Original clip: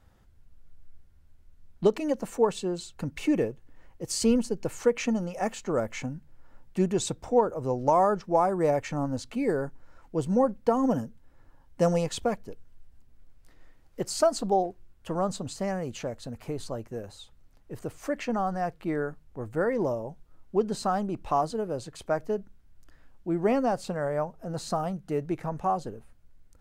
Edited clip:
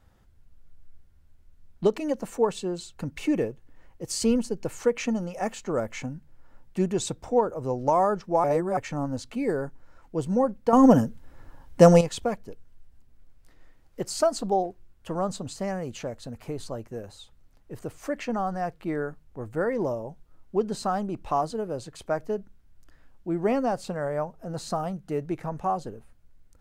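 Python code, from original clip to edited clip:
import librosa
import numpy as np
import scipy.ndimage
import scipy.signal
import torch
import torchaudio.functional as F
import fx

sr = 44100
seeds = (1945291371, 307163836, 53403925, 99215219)

y = fx.edit(x, sr, fx.reverse_span(start_s=8.44, length_s=0.33),
    fx.clip_gain(start_s=10.73, length_s=1.28, db=9.5), tone=tone)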